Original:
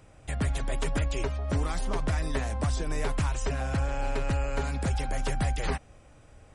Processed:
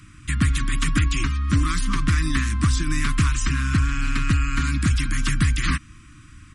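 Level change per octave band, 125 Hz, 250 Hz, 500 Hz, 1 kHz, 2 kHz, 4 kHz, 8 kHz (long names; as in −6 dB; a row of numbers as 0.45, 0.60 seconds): +8.5, +9.5, −11.0, +4.0, +10.5, +10.5, +10.0 decibels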